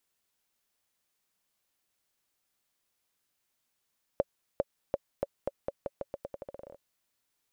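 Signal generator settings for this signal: bouncing ball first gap 0.40 s, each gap 0.85, 560 Hz, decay 35 ms -13.5 dBFS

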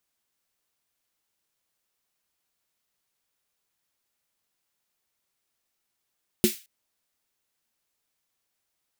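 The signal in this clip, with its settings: snare drum length 0.22 s, tones 220 Hz, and 360 Hz, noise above 2 kHz, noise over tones -7.5 dB, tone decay 0.12 s, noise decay 0.33 s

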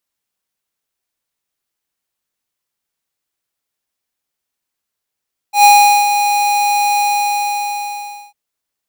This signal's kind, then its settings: ADSR square 821 Hz, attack 112 ms, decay 420 ms, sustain -8.5 dB, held 1.46 s, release 1340 ms -5.5 dBFS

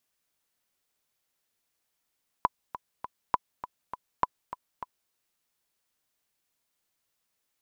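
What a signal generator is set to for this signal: metronome 202 bpm, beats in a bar 3, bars 3, 996 Hz, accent 13.5 dB -9 dBFS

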